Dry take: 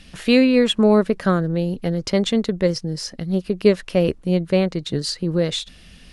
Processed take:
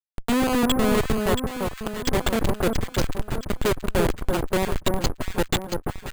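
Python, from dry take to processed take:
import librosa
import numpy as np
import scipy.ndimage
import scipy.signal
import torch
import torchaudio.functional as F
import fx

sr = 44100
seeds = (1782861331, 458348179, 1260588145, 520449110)

p1 = fx.riaa(x, sr, side='recording')
p2 = fx.env_lowpass_down(p1, sr, base_hz=2400.0, full_db=-15.5)
p3 = fx.schmitt(p2, sr, flips_db=-18.5)
p4 = p3 + fx.echo_alternate(p3, sr, ms=339, hz=1400.0, feedback_pct=66, wet_db=-3.5, dry=0)
p5 = np.repeat(scipy.signal.resample_poly(p4, 1, 4), 4)[:len(p4)]
y = F.gain(torch.from_numpy(p5), 4.5).numpy()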